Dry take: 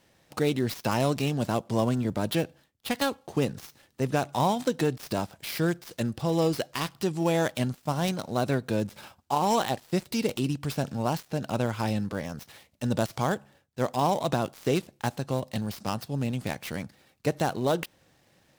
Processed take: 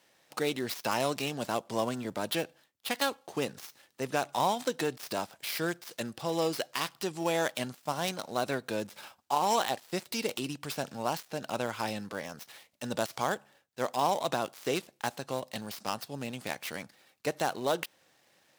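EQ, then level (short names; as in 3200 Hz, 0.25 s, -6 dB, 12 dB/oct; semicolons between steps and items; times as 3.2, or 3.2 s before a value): HPF 620 Hz 6 dB/oct; 0.0 dB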